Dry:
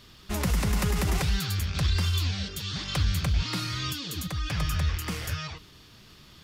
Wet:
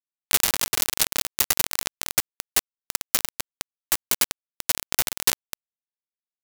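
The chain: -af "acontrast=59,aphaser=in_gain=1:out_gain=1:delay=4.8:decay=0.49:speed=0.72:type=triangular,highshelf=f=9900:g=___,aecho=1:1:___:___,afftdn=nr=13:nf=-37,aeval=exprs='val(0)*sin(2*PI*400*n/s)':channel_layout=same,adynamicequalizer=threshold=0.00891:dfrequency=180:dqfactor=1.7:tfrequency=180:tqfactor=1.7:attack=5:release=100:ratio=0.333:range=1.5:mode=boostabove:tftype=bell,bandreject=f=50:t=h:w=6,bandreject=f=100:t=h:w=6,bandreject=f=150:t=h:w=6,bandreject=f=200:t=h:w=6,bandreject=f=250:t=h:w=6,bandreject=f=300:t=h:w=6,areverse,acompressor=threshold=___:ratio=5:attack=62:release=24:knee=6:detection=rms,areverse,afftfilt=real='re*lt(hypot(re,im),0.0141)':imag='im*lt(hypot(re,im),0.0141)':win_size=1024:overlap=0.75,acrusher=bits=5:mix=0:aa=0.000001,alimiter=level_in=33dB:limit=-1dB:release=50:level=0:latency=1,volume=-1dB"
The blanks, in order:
-2, 116, 0.168, -35dB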